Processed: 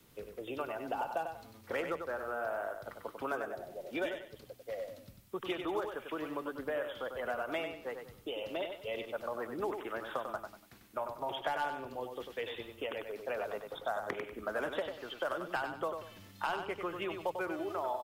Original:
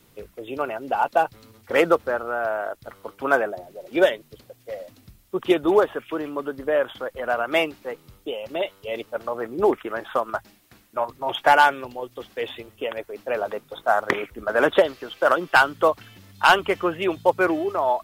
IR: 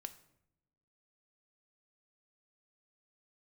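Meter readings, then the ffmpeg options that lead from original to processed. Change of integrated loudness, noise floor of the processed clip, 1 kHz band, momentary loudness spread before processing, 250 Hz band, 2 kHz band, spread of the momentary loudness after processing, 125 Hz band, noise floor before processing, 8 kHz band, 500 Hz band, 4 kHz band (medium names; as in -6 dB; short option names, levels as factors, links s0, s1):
-15.5 dB, -58 dBFS, -16.0 dB, 16 LU, -14.5 dB, -16.5 dB, 8 LU, -11.5 dB, -57 dBFS, no reading, -14.5 dB, -14.0 dB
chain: -filter_complex "[0:a]acrossover=split=110|700|4200[s0][s1][s2][s3];[s0]acompressor=threshold=0.002:ratio=4[s4];[s1]acompressor=threshold=0.02:ratio=4[s5];[s2]acompressor=threshold=0.02:ratio=4[s6];[s3]acompressor=threshold=0.002:ratio=4[s7];[s4][s5][s6][s7]amix=inputs=4:normalize=0,asplit=2[s8][s9];[s9]aecho=0:1:96|192|288|384:0.473|0.147|0.0455|0.0141[s10];[s8][s10]amix=inputs=2:normalize=0,volume=0.501"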